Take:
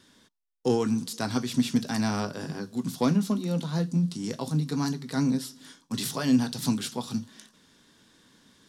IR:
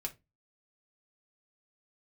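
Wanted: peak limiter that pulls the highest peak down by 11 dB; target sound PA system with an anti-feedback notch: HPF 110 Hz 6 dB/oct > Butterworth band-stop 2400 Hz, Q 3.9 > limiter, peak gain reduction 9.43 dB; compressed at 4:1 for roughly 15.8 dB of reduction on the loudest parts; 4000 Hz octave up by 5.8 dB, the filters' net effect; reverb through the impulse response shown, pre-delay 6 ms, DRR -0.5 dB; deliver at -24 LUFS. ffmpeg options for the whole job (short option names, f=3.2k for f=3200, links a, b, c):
-filter_complex "[0:a]equalizer=f=4k:t=o:g=7,acompressor=threshold=-38dB:ratio=4,alimiter=level_in=8.5dB:limit=-24dB:level=0:latency=1,volume=-8.5dB,asplit=2[a][b];[1:a]atrim=start_sample=2205,adelay=6[c];[b][c]afir=irnorm=-1:irlink=0,volume=1dB[d];[a][d]amix=inputs=2:normalize=0,highpass=f=110:p=1,asuperstop=centerf=2400:order=8:qfactor=3.9,volume=19.5dB,alimiter=limit=-15dB:level=0:latency=1"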